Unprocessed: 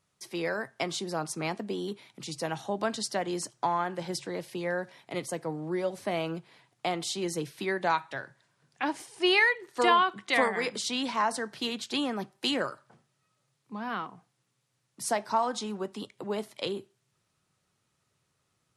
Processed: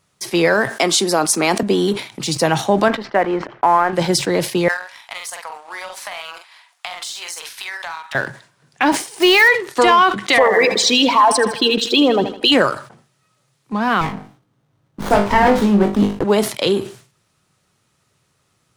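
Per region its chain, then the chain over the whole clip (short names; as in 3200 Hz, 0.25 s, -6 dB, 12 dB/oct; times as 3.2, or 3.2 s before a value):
0.69–1.63 HPF 200 Hz 24 dB/oct + high shelf 6200 Hz +8 dB
2.88–3.93 G.711 law mismatch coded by A + LPF 2200 Hz 24 dB/oct + bell 110 Hz -13.5 dB 1.8 oct
4.68–8.15 HPF 870 Hz 24 dB/oct + doubler 44 ms -5 dB + compressor 12:1, threshold -41 dBFS
8.92–9.49 block floating point 5-bit + HPF 150 Hz 24 dB/oct
10.38–12.52 formant sharpening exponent 2 + feedback echo 79 ms, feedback 60%, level -14.5 dB
14.01–16.24 tilt -2 dB/oct + flutter echo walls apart 3.4 m, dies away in 0.28 s + running maximum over 17 samples
whole clip: sample leveller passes 1; maximiser +17 dB; sustainer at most 130 dB/s; gain -3.5 dB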